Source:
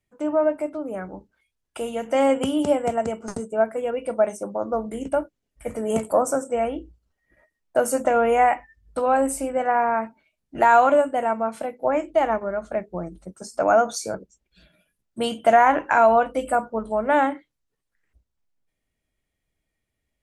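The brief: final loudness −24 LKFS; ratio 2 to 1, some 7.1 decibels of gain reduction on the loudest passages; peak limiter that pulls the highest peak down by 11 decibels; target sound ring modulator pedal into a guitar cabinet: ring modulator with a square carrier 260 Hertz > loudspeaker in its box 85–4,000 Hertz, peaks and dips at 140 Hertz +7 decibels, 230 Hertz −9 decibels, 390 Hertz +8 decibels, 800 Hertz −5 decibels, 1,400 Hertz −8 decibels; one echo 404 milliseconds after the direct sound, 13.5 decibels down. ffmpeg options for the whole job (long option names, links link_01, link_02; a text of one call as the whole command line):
ffmpeg -i in.wav -af "acompressor=threshold=-24dB:ratio=2,alimiter=limit=-19.5dB:level=0:latency=1,aecho=1:1:404:0.211,aeval=exprs='val(0)*sgn(sin(2*PI*260*n/s))':channel_layout=same,highpass=85,equalizer=frequency=140:width_type=q:width=4:gain=7,equalizer=frequency=230:width_type=q:width=4:gain=-9,equalizer=frequency=390:width_type=q:width=4:gain=8,equalizer=frequency=800:width_type=q:width=4:gain=-5,equalizer=frequency=1400:width_type=q:width=4:gain=-8,lowpass=frequency=4000:width=0.5412,lowpass=frequency=4000:width=1.3066,volume=6.5dB" out.wav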